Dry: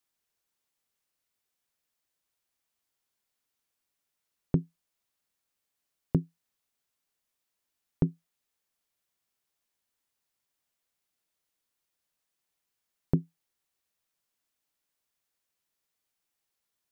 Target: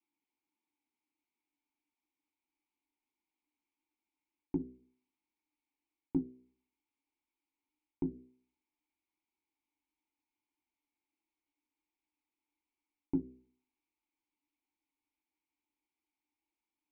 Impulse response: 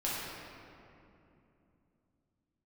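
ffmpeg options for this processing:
-filter_complex "[0:a]asplit=3[link_01][link_02][link_03];[link_01]bandpass=frequency=300:width_type=q:width=8,volume=0dB[link_04];[link_02]bandpass=frequency=870:width_type=q:width=8,volume=-6dB[link_05];[link_03]bandpass=frequency=2240:width_type=q:width=8,volume=-9dB[link_06];[link_04][link_05][link_06]amix=inputs=3:normalize=0,equalizer=frequency=140:width=5:gain=-14,bandreject=frequency=63.28:width_type=h:width=4,bandreject=frequency=126.56:width_type=h:width=4,bandreject=frequency=189.84:width_type=h:width=4,bandreject=frequency=253.12:width_type=h:width=4,bandreject=frequency=316.4:width_type=h:width=4,bandreject=frequency=379.68:width_type=h:width=4,bandreject=frequency=442.96:width_type=h:width=4,bandreject=frequency=506.24:width_type=h:width=4,bandreject=frequency=569.52:width_type=h:width=4,bandreject=frequency=632.8:width_type=h:width=4,areverse,acompressor=threshold=-41dB:ratio=6,areverse,flanger=delay=5.2:depth=2.6:regen=-61:speed=1.5:shape=sinusoidal,asubboost=boost=9.5:cutoff=53,asplit=2[link_07][link_08];[link_08]adynamicsmooth=sensitivity=8:basefreq=690,volume=-1.5dB[link_09];[link_07][link_09]amix=inputs=2:normalize=0,volume=14dB"

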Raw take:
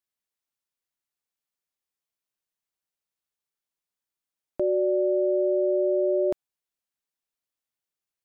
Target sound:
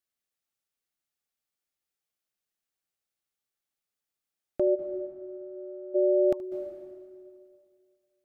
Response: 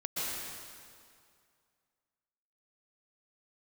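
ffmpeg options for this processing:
-filter_complex "[0:a]asuperstop=centerf=990:order=20:qfactor=7,asplit=3[link_01][link_02][link_03];[link_01]afade=type=out:start_time=4.74:duration=0.02[link_04];[link_02]agate=range=-33dB:threshold=-10dB:ratio=3:detection=peak,afade=type=in:start_time=4.74:duration=0.02,afade=type=out:start_time=5.94:duration=0.02[link_05];[link_03]afade=type=in:start_time=5.94:duration=0.02[link_06];[link_04][link_05][link_06]amix=inputs=3:normalize=0,asplit=2[link_07][link_08];[1:a]atrim=start_sample=2205,adelay=75[link_09];[link_08][link_09]afir=irnorm=-1:irlink=0,volume=-15dB[link_10];[link_07][link_10]amix=inputs=2:normalize=0"

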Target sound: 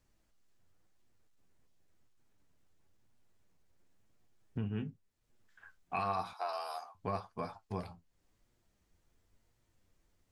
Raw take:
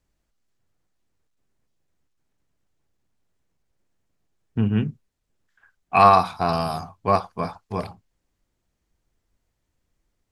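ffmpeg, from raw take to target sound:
ffmpeg -i in.wav -filter_complex "[0:a]alimiter=limit=-8.5dB:level=0:latency=1:release=12,flanger=delay=8.3:depth=3.4:regen=49:speed=0.94:shape=sinusoidal,acompressor=threshold=-51dB:ratio=2,asettb=1/sr,asplit=3[link_01][link_02][link_03];[link_01]atrim=end=6.334[link_04];[link_02]atrim=start=6.33:end=6.95,asetpts=PTS-STARTPTS,afade=type=in:duration=0.004:curve=qsin,afade=type=out:start_time=0.616:duration=0.004:curve=qsin,highpass=frequency=530:width=0.5412,highpass=frequency=530:width=1.3066[link_05];[link_03]atrim=start=6.946[link_06];[link_04][link_05]acrossfade=duration=0.004:curve1=hsin:curve2=qsin[link_07];[link_07][link_06]acrossfade=duration=0.004:curve1=qsin:curve2=hsin,volume=4.5dB" out.wav

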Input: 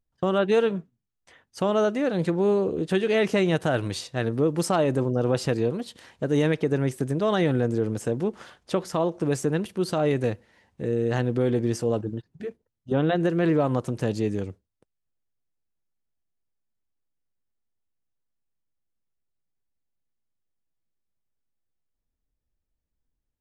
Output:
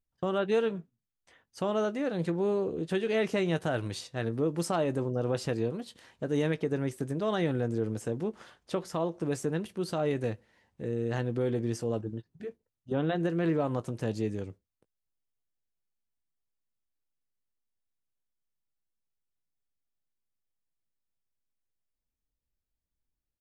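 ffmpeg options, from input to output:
ffmpeg -i in.wav -filter_complex "[0:a]asplit=2[link_01][link_02];[link_02]adelay=18,volume=-14dB[link_03];[link_01][link_03]amix=inputs=2:normalize=0,volume=-6.5dB" out.wav

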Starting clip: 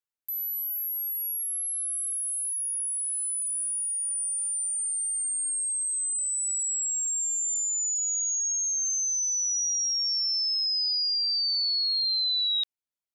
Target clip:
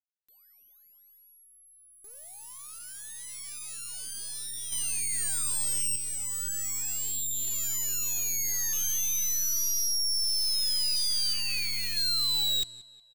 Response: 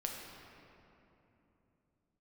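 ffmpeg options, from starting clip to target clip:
-filter_complex "[0:a]aeval=exprs='sgn(val(0))*max(abs(val(0))-0.00335,0)':channel_layout=same,afwtdn=0.02,asoftclip=type=tanh:threshold=-34dB,aecho=1:1:183|366|549|732:0.106|0.0519|0.0254|0.0125,adynamicsmooth=sensitivity=2:basefreq=4300,aeval=exprs='0.0188*(cos(1*acos(clip(val(0)/0.0188,-1,1)))-cos(1*PI/2))+0.0075*(cos(6*acos(clip(val(0)/0.0188,-1,1)))-cos(6*PI/2))':channel_layout=same,equalizer=frequency=7500:width_type=o:width=2.1:gain=5.5,asettb=1/sr,asplit=3[link_01][link_02][link_03];[link_01]atrim=end=4.724[link_04];[link_02]atrim=start=4.72:end=5.96,asetpts=PTS-STARTPTS,afade=type=in:duration=0.004:curve=qsin,afade=type=out:start_time=1.236:duration=0.004:curve=qsin,acontrast=47[link_05];[link_03]atrim=start=5.956[link_06];[link_04][link_05]acrossfade=duration=0.004:curve1=hsin:curve2=qsin[link_07];[link_07][link_06]acrossfade=duration=0.004:curve1=qsin:curve2=hsin,asettb=1/sr,asplit=3[link_08][link_09][link_10];[link_08]atrim=end=11.334[link_11];[link_09]atrim=start=11.33:end=11.97,asetpts=PTS-STARTPTS,afade=type=in:duration=0.004:curve=qsin,afade=type=out:start_time=0.636:duration=0.004:curve=qsin,equalizer=frequency=2500:width_type=o:width=0.33:gain=12,equalizer=frequency=4000:width_type=o:width=0.33:gain=-11,equalizer=frequency=8000:width_type=o:width=0.33:gain=-7[link_12];[link_10]atrim=start=11.966[link_13];[link_11][link_12]acrossfade=duration=0.004:curve1=hsin:curve2=qsin[link_14];[link_14][link_13]acrossfade=duration=0.004:curve1=qsin:curve2=hsin,volume=7.5dB"

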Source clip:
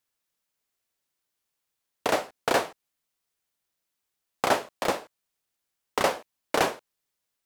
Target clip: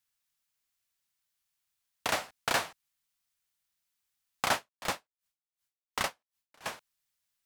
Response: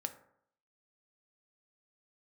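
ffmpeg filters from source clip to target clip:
-filter_complex "[0:a]equalizer=frequency=410:width_type=o:width=1.8:gain=-14,asettb=1/sr,asplit=3[link_01][link_02][link_03];[link_01]atrim=end=4.534[link_04];[link_02]atrim=start=4.53:end=6.66,asetpts=PTS-STARTPTS,afade=type=in:duration=0.004:curve=qsin,afade=type=out:start_time=2.126:duration=0.004:curve=qsin,aeval=exprs='val(0)*pow(10,-34*(0.5-0.5*cos(2*PI*2.7*n/s))/20)':channel_layout=same[link_05];[link_03]atrim=start=6.656[link_06];[link_04][link_05]acrossfade=duration=0.004:curve1=hsin:curve2=qsin[link_07];[link_07][link_06]acrossfade=duration=0.004:curve1=qsin:curve2=hsin"

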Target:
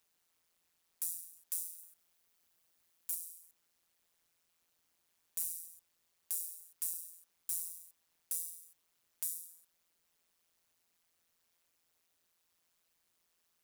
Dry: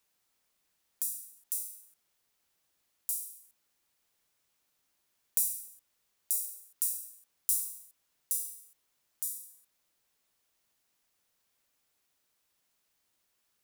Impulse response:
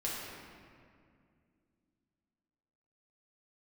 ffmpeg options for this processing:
-filter_complex "[0:a]asettb=1/sr,asplit=3[link_01][link_02][link_03];[link_01]atrim=end=1.784[link_04];[link_02]atrim=start=1.78:end=3.15,asetpts=PTS-STARTPTS,afade=type=in:duration=0.004:curve=qsin,afade=type=out:start_time=1.366:duration=0.004:curve=qsin,highshelf=frequency=10000:gain=5[link_05];[link_03]atrim=start=3.146[link_06];[link_04][link_05]acrossfade=duration=0.004:curve1=hsin:curve2=qsin[link_07];[link_07][link_06]acrossfade=duration=0.004:curve1=qsin:curve2=hsin,alimiter=limit=-11dB:level=0:latency=1:release=376,asoftclip=type=tanh:threshold=-23dB,tremolo=f=170:d=0.919,volume=3dB"

